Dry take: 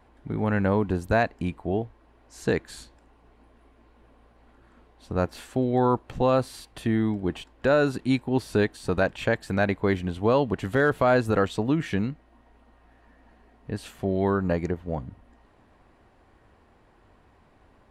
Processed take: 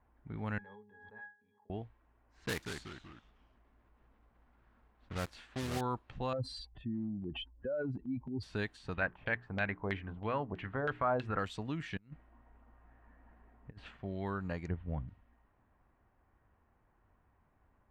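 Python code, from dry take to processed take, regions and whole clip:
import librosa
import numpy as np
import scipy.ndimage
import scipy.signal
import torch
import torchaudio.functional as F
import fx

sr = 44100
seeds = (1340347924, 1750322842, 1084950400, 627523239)

y = fx.chain(x, sr, fx.highpass(hz=560.0, slope=12),
    fx.octave_resonator(note='G#', decay_s=0.31),
    fx.pre_swell(db_per_s=31.0), at=(0.58, 1.7))
y = fx.chain(y, sr, fx.block_float(bits=3),
    fx.echo_pitch(ms=185, semitones=-2, count=3, db_per_echo=-6.0), at=(2.44, 5.82))
y = fx.chain(y, sr, fx.spec_expand(power=2.5),
    fx.transient(attack_db=1, sustain_db=8), at=(6.33, 8.43))
y = fx.chain(y, sr, fx.hum_notches(base_hz=60, count=7),
    fx.filter_lfo_lowpass(shape='saw_down', hz=3.1, low_hz=610.0, high_hz=3300.0, q=2.0), at=(8.94, 11.39))
y = fx.chain(y, sr, fx.over_compress(threshold_db=-37.0, ratio=-0.5),
    fx.high_shelf(hz=3600.0, db=-9.5), at=(11.97, 13.97))
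y = fx.chain(y, sr, fx.lowpass(hz=3200.0, slope=24),
    fx.low_shelf(hz=200.0, db=10.0), at=(14.68, 15.08))
y = fx.tone_stack(y, sr, knobs='5-5-5')
y = fx.env_lowpass(y, sr, base_hz=1400.0, full_db=-35.5)
y = fx.high_shelf(y, sr, hz=3500.0, db=-10.0)
y = y * 10.0 ** (3.5 / 20.0)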